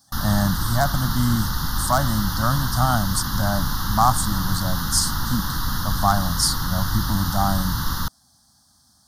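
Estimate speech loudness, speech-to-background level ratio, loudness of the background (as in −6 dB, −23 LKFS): −23.5 LKFS, 2.5 dB, −26.0 LKFS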